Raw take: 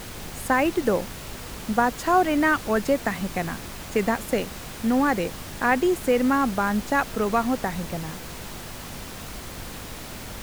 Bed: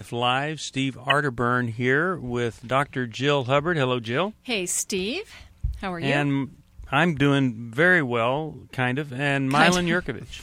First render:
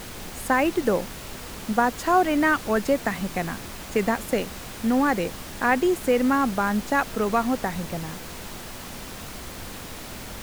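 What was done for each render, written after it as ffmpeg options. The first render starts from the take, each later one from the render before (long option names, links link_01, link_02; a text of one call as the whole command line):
ffmpeg -i in.wav -af "bandreject=frequency=50:width_type=h:width=4,bandreject=frequency=100:width_type=h:width=4,bandreject=frequency=150:width_type=h:width=4" out.wav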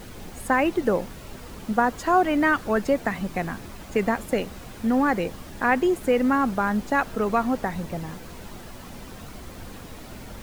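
ffmpeg -i in.wav -af "afftdn=noise_reduction=8:noise_floor=-38" out.wav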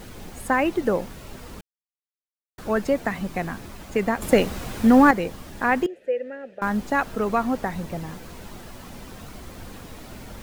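ffmpeg -i in.wav -filter_complex "[0:a]asettb=1/sr,asplit=3[link_01][link_02][link_03];[link_01]atrim=end=5.864[link_04];[link_02]atrim=start=5.86:end=6.62,asetpts=PTS-STARTPTS,afade=type=in:duration=0.004:curve=qsin,afade=type=out:start_time=0.756:duration=0.004:curve=qsin,asplit=3[link_05][link_06][link_07];[link_05]bandpass=frequency=530:width_type=q:width=8,volume=0dB[link_08];[link_06]bandpass=frequency=1840:width_type=q:width=8,volume=-6dB[link_09];[link_07]bandpass=frequency=2480:width_type=q:width=8,volume=-9dB[link_10];[link_08][link_09][link_10]amix=inputs=3:normalize=0[link_11];[link_03]atrim=start=6.616[link_12];[link_04][link_11]acrossfade=duration=0.004:curve1=hsin:curve2=qsin[link_13];[link_13][link_12]acrossfade=duration=0.004:curve1=qsin:curve2=hsin,asplit=5[link_14][link_15][link_16][link_17][link_18];[link_14]atrim=end=1.61,asetpts=PTS-STARTPTS,afade=type=out:start_time=1.606:duration=0.004:curve=hsin[link_19];[link_15]atrim=start=1.61:end=2.58,asetpts=PTS-STARTPTS,volume=0[link_20];[link_16]atrim=start=2.58:end=4.222,asetpts=PTS-STARTPTS,afade=type=in:duration=0.004:curve=hsin[link_21];[link_17]atrim=start=4.218:end=5.112,asetpts=PTS-STARTPTS,volume=7.5dB[link_22];[link_18]atrim=start=5.108[link_23];[link_19][link_20][link_21]concat=n=3:v=0:a=1[link_24];[link_24][link_22]acrossfade=duration=0.004:curve1=hsin:curve2=hsin[link_25];[link_25][link_23]acrossfade=duration=0.004:curve1=hsin:curve2=hsin" out.wav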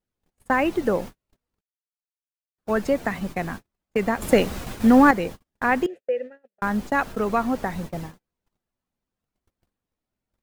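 ffmpeg -i in.wav -af "agate=range=-46dB:threshold=-32dB:ratio=16:detection=peak" out.wav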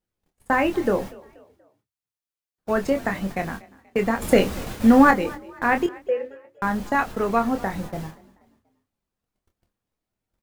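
ffmpeg -i in.wav -filter_complex "[0:a]asplit=2[link_01][link_02];[link_02]adelay=26,volume=-7dB[link_03];[link_01][link_03]amix=inputs=2:normalize=0,asplit=4[link_04][link_05][link_06][link_07];[link_05]adelay=240,afreqshift=33,volume=-22.5dB[link_08];[link_06]adelay=480,afreqshift=66,volume=-29.8dB[link_09];[link_07]adelay=720,afreqshift=99,volume=-37.2dB[link_10];[link_04][link_08][link_09][link_10]amix=inputs=4:normalize=0" out.wav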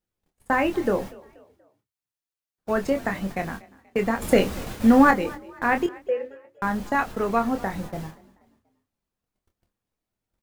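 ffmpeg -i in.wav -af "volume=-1.5dB" out.wav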